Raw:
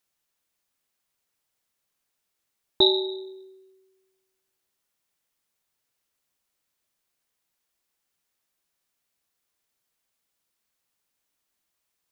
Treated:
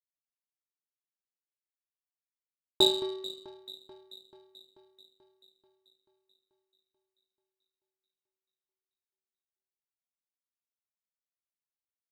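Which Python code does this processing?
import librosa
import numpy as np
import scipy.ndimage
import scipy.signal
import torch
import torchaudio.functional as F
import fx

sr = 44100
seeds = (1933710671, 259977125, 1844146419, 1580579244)

y = fx.echo_alternate(x, sr, ms=218, hz=1600.0, feedback_pct=83, wet_db=-10.0)
y = fx.power_curve(y, sr, exponent=1.4)
y = y * librosa.db_to_amplitude(-1.5)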